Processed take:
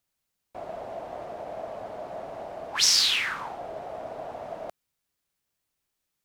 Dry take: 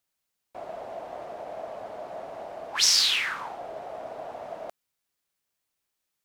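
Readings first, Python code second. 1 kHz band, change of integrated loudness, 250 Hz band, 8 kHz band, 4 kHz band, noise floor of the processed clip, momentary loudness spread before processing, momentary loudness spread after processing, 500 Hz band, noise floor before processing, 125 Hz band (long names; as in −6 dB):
+0.5 dB, −3.5 dB, +3.0 dB, 0.0 dB, 0.0 dB, −82 dBFS, 20 LU, 19 LU, +1.0 dB, −82 dBFS, can't be measured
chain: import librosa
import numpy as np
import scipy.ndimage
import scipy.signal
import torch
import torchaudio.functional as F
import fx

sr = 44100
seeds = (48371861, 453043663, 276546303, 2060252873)

y = fx.low_shelf(x, sr, hz=220.0, db=7.5)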